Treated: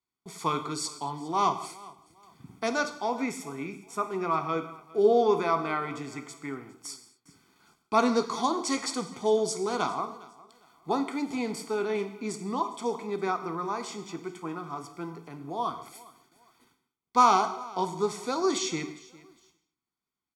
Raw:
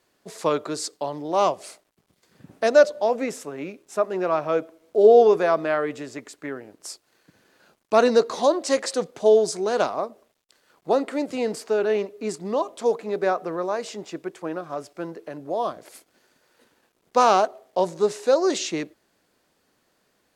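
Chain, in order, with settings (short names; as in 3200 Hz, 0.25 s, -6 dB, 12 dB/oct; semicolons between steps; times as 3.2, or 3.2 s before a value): feedback echo 0.407 s, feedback 29%, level -21.5 dB; gate with hold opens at -49 dBFS; comb 0.9 ms, depth 88%; non-linear reverb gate 0.26 s falling, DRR 7.5 dB; gain -5.5 dB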